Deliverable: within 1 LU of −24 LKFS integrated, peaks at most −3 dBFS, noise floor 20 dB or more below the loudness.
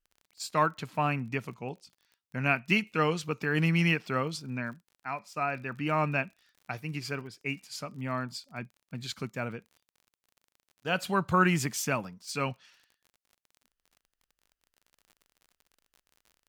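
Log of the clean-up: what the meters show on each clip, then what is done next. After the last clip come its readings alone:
crackle rate 38 per second; integrated loudness −31.0 LKFS; sample peak −11.5 dBFS; target loudness −24.0 LKFS
→ click removal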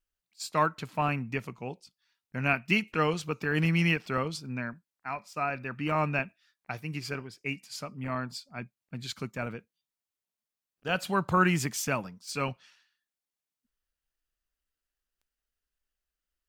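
crackle rate 0.18 per second; integrated loudness −31.0 LKFS; sample peak −11.5 dBFS; target loudness −24.0 LKFS
→ level +7 dB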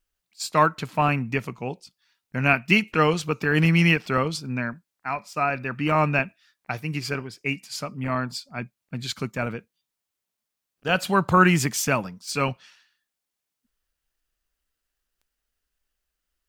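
integrated loudness −24.0 LKFS; sample peak −4.5 dBFS; background noise floor −84 dBFS

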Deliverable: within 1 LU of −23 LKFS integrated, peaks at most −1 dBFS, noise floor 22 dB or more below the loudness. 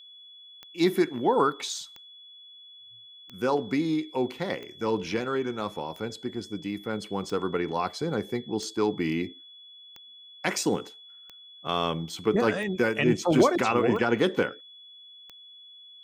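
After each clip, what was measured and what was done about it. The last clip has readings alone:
number of clicks 12; interfering tone 3,400 Hz; level of the tone −47 dBFS; integrated loudness −27.5 LKFS; sample peak −10.0 dBFS; target loudness −23.0 LKFS
→ click removal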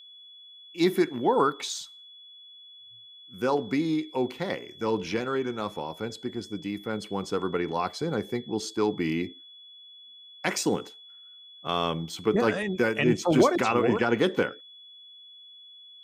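number of clicks 0; interfering tone 3,400 Hz; level of the tone −47 dBFS
→ notch filter 3,400 Hz, Q 30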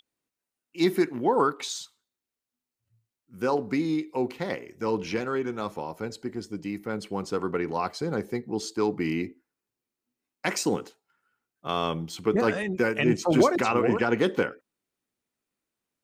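interfering tone none found; integrated loudness −27.5 LKFS; sample peak −10.5 dBFS; target loudness −23.0 LKFS
→ level +4.5 dB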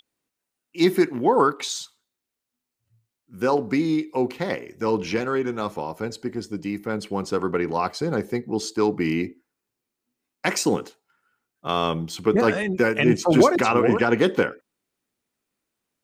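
integrated loudness −23.0 LKFS; sample peak −6.0 dBFS; background noise floor −84 dBFS

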